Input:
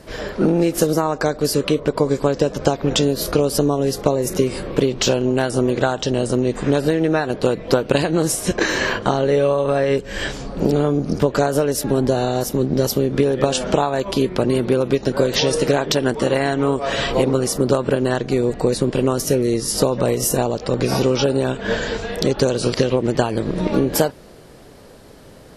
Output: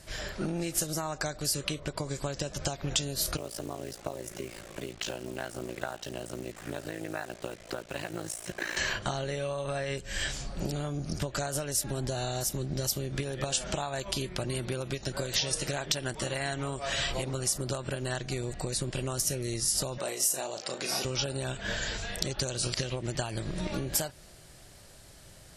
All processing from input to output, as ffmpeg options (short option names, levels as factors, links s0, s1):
-filter_complex "[0:a]asettb=1/sr,asplit=3[s0][s1][s2];[s0]atrim=end=3.374[s3];[s1]atrim=start=3.37:end=8.77,asetpts=PTS-STARTPTS,afade=t=in:d=0.004:c=qsin,afade=t=out:st=5.396:d=0.004:c=qsin,acrossover=split=190 2900:gain=0.251 1 0.224[s4][s5][s6];[s4][s5][s6]amix=inputs=3:normalize=0,tremolo=f=56:d=0.919,acrusher=bits=6:mix=0:aa=0.5[s7];[s2]atrim=start=8.766[s8];[s3][s7]acrossfade=d=0.004:c1=hsin:c2=qsin[s9];[s9][s8]acrossfade=d=0.004:c1=qsin:c2=hsin,asettb=1/sr,asplit=3[s10][s11][s12];[s10]atrim=end=19.984[s13];[s11]atrim=start=19.98:end=21.05,asetpts=PTS-STARTPTS,afade=t=in:d=0.004:c=qsin,afade=t=out:st=1.066:d=0.004:c=qsin,highpass=320,asplit=2[s14][s15];[s15]adelay=36,volume=0.422[s16];[s14][s16]amix=inputs=2:normalize=0,atrim=end_sample=47187[s17];[s12]atrim=start=21.046[s18];[s13][s17]acrossfade=d=0.004:c1=hsin:c2=qsin[s19];[s19][s18]acrossfade=d=0.004:c1=qsin:c2=hsin,equalizer=f=250:t=o:w=1:g=-12,equalizer=f=1000:t=o:w=1:g=-7,equalizer=f=8000:t=o:w=1:g=7,acompressor=threshold=0.0794:ratio=2.5,equalizer=f=460:w=3.6:g=-12.5,volume=0.562"